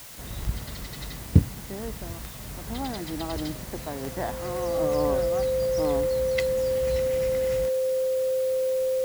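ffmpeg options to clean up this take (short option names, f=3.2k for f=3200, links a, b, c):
-af "adeclick=t=4,bandreject=f=520:w=30,afwtdn=0.0063"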